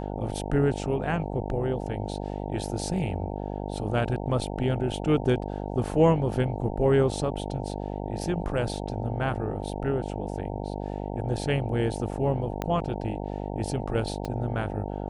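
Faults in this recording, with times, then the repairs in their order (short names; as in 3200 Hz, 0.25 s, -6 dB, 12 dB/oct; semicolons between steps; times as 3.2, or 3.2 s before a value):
buzz 50 Hz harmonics 18 -33 dBFS
12.62 pop -15 dBFS
14.25 pop -20 dBFS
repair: de-click; de-hum 50 Hz, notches 18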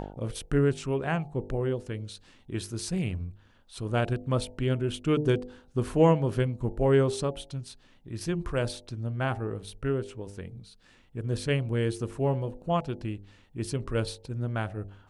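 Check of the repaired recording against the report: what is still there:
12.62 pop
14.25 pop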